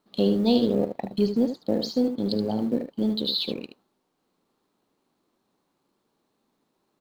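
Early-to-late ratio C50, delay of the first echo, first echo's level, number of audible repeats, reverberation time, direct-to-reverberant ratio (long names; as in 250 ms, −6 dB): no reverb audible, 75 ms, −8.5 dB, 1, no reverb audible, no reverb audible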